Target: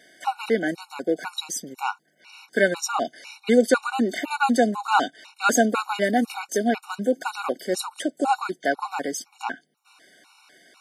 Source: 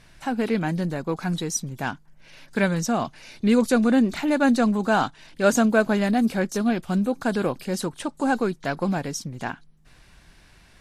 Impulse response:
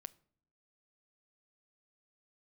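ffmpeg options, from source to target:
-af "highpass=f=280:w=0.5412,highpass=f=280:w=1.3066,afftfilt=real='re*gt(sin(2*PI*2*pts/sr)*(1-2*mod(floor(b*sr/1024/740),2)),0)':imag='im*gt(sin(2*PI*2*pts/sr)*(1-2*mod(floor(b*sr/1024/740),2)),0)':win_size=1024:overlap=0.75,volume=5.5dB"

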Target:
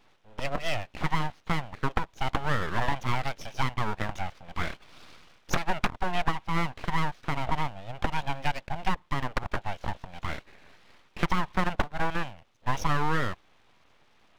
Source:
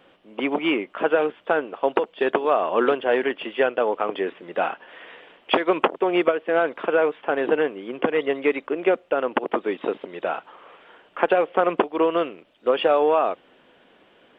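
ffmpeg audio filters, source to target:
-af "equalizer=f=77:w=0.38:g=5,aeval=exprs='abs(val(0))':c=same,volume=-5.5dB"

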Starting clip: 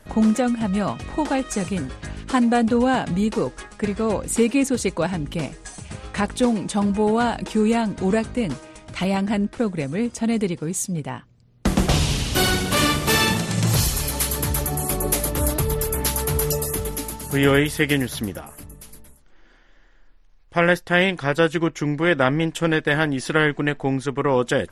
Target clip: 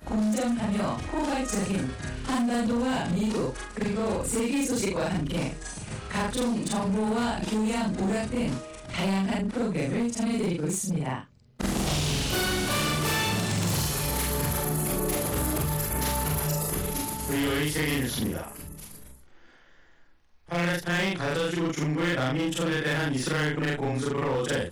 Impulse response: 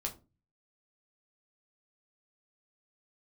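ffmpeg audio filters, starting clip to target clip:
-filter_complex "[0:a]afftfilt=real='re':imag='-im':win_size=4096:overlap=0.75,acrossover=split=140|2800[a][b][c];[a]acompressor=threshold=-36dB:ratio=4[d];[b]acompressor=threshold=-28dB:ratio=4[e];[c]acompressor=threshold=-33dB:ratio=4[f];[d][e][f]amix=inputs=3:normalize=0,volume=26.5dB,asoftclip=hard,volume=-26.5dB,volume=4dB"

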